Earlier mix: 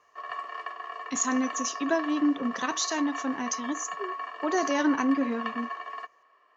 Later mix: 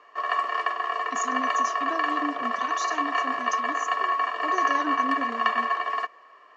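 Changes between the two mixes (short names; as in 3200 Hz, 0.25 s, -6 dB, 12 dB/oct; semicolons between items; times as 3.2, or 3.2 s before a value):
speech -7.5 dB; background +10.5 dB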